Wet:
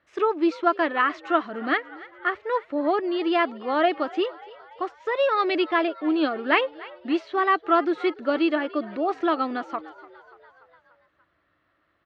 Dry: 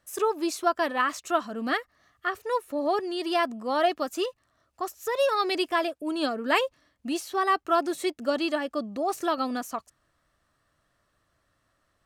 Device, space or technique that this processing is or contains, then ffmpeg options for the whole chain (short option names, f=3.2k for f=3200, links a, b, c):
frequency-shifting delay pedal into a guitar cabinet: -filter_complex "[0:a]asplit=6[a][b][c][d][e][f];[b]adelay=291,afreqshift=64,volume=-20dB[g];[c]adelay=582,afreqshift=128,volume=-24.2dB[h];[d]adelay=873,afreqshift=192,volume=-28.3dB[i];[e]adelay=1164,afreqshift=256,volume=-32.5dB[j];[f]adelay=1455,afreqshift=320,volume=-36.6dB[k];[a][g][h][i][j][k]amix=inputs=6:normalize=0,highpass=76,equalizer=f=120:t=q:w=4:g=-8,equalizer=f=230:t=q:w=4:g=-4,equalizer=f=320:t=q:w=4:g=7,equalizer=f=1.4k:t=q:w=4:g=3,equalizer=f=2.1k:t=q:w=4:g=5,lowpass=f=3.6k:w=0.5412,lowpass=f=3.6k:w=1.3066,volume=1.5dB"